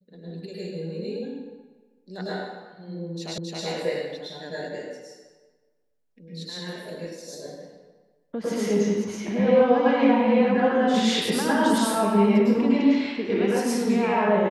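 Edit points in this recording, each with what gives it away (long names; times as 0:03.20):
0:03.38: the same again, the last 0.27 s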